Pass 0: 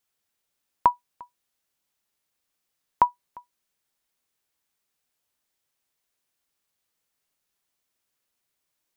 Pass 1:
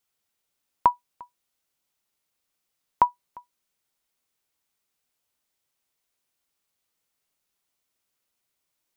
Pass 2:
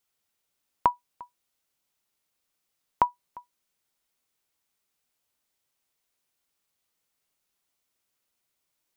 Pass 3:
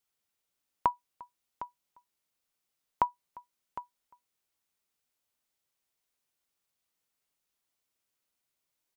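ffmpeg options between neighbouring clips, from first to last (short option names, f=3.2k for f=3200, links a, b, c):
-af "bandreject=f=1.7k:w=17"
-af "acompressor=threshold=-20dB:ratio=2"
-af "aecho=1:1:758:0.211,volume=-4.5dB"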